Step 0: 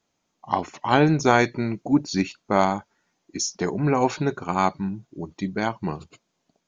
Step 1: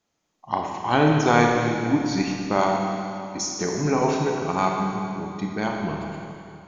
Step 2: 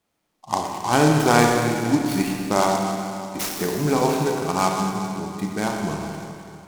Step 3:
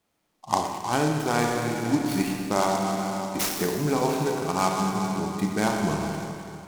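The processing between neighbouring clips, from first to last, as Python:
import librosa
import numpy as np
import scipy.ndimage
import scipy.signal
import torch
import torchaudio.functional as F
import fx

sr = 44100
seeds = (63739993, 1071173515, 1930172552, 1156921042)

y1 = fx.rev_schroeder(x, sr, rt60_s=2.7, comb_ms=26, drr_db=0.0)
y1 = y1 * librosa.db_to_amplitude(-2.5)
y2 = fx.noise_mod_delay(y1, sr, seeds[0], noise_hz=5300.0, depth_ms=0.04)
y2 = y2 * librosa.db_to_amplitude(1.5)
y3 = fx.rider(y2, sr, range_db=5, speed_s=0.5)
y3 = y3 * librosa.db_to_amplitude(-3.5)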